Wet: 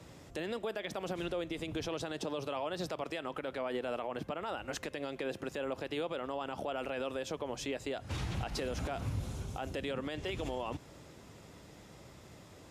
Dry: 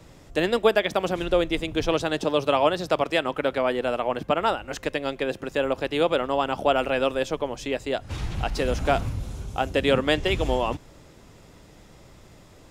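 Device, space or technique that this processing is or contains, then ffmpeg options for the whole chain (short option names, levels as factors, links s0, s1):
podcast mastering chain: -af "highpass=69,acompressor=threshold=0.0501:ratio=2.5,alimiter=level_in=1.06:limit=0.0631:level=0:latency=1:release=51,volume=0.944,volume=0.75" -ar 32000 -c:a libmp3lame -b:a 96k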